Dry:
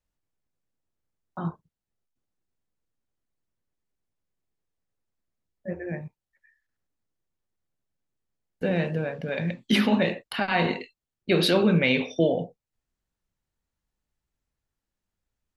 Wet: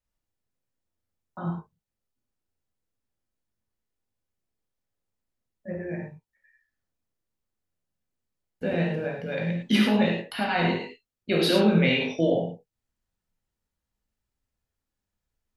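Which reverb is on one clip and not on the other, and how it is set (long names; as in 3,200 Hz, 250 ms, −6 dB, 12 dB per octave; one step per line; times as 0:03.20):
reverb whose tail is shaped and stops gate 130 ms flat, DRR −1 dB
level −4 dB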